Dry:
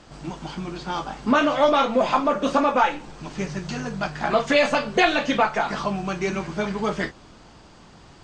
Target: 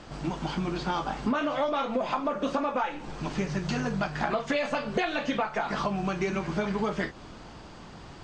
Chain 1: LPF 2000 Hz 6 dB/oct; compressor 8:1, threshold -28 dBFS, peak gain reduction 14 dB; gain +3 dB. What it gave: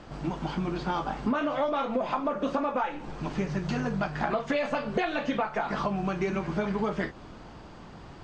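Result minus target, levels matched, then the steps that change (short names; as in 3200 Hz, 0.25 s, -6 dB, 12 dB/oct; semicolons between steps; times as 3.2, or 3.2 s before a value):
4000 Hz band -3.5 dB
change: LPF 5000 Hz 6 dB/oct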